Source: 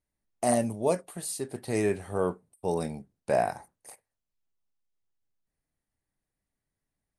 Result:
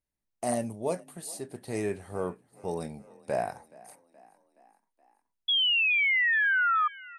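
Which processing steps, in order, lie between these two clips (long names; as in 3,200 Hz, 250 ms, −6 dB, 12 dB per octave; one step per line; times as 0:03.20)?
sound drawn into the spectrogram fall, 0:05.48–0:06.88, 1,200–3,400 Hz −20 dBFS
echo with shifted repeats 423 ms, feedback 58%, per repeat +32 Hz, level −22.5 dB
level −4.5 dB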